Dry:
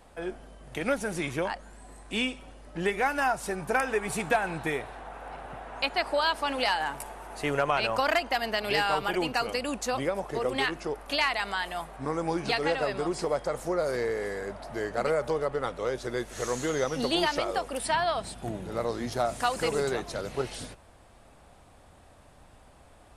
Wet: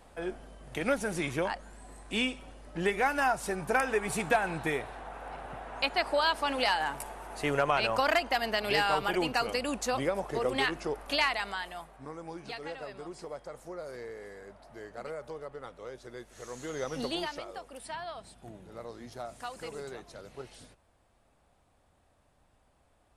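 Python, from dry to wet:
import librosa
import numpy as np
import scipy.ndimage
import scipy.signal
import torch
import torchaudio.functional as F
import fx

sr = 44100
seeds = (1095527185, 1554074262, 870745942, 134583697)

y = fx.gain(x, sr, db=fx.line((11.22, -1.0), (12.18, -13.0), (16.46, -13.0), (16.98, -4.5), (17.47, -13.0)))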